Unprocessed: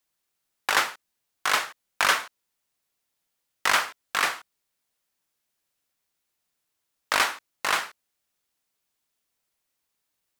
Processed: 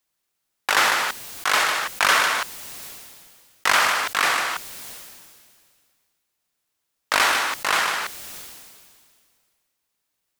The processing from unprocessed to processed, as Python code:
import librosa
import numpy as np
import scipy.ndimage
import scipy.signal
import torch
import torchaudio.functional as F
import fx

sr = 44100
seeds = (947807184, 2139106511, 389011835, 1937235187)

p1 = x + fx.echo_single(x, sr, ms=151, db=-18.5, dry=0)
p2 = fx.sustainer(p1, sr, db_per_s=29.0)
y = p2 * 10.0 ** (2.0 / 20.0)